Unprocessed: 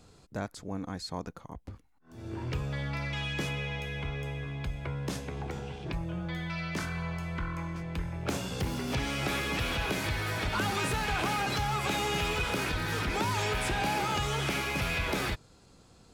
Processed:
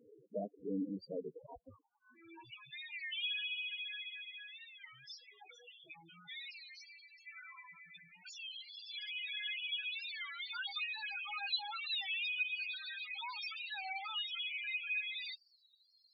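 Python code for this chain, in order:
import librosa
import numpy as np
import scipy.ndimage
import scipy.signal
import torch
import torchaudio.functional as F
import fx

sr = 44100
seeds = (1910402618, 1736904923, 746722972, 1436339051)

y = fx.filter_sweep_bandpass(x, sr, from_hz=430.0, to_hz=4500.0, start_s=1.39, end_s=2.55, q=1.3)
y = fx.pre_emphasis(y, sr, coefficient=0.9, at=(6.51, 7.27))
y = fx.spec_topn(y, sr, count=4)
y = fx.record_warp(y, sr, rpm=33.33, depth_cents=160.0)
y = F.gain(torch.from_numpy(y), 6.5).numpy()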